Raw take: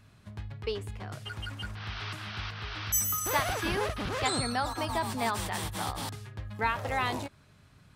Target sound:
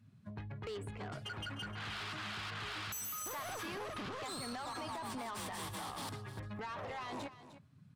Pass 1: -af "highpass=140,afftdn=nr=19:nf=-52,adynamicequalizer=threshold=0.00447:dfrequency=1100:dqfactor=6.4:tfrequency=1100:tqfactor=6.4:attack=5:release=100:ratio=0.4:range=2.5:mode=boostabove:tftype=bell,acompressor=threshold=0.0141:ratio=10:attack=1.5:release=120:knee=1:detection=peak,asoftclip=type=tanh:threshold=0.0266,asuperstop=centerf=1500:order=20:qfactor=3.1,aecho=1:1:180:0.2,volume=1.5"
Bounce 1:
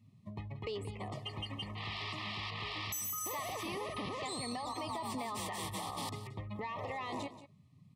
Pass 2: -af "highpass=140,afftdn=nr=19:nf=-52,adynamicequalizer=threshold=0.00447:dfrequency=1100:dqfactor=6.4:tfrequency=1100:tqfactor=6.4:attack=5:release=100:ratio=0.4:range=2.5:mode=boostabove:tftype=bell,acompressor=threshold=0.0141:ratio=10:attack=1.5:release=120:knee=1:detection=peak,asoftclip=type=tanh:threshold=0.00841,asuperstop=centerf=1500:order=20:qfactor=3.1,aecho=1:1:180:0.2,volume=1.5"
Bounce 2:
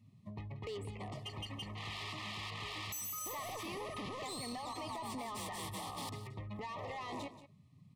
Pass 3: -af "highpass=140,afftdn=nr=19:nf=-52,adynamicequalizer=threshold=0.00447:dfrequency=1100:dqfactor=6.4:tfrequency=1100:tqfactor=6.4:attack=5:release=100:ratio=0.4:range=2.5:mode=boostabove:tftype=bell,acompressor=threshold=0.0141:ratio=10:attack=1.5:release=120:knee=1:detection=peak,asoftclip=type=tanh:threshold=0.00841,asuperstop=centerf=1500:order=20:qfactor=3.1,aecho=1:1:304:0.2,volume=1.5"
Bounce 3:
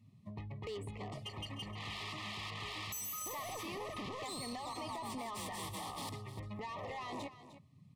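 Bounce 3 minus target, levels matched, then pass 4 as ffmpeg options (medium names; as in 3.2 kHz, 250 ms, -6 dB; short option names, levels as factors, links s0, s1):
2 kHz band -3.0 dB
-af "highpass=140,afftdn=nr=19:nf=-52,adynamicequalizer=threshold=0.00447:dfrequency=1100:dqfactor=6.4:tfrequency=1100:tqfactor=6.4:attack=5:release=100:ratio=0.4:range=2.5:mode=boostabove:tftype=bell,acompressor=threshold=0.0141:ratio=10:attack=1.5:release=120:knee=1:detection=peak,asoftclip=type=tanh:threshold=0.00841,aecho=1:1:304:0.2,volume=1.5"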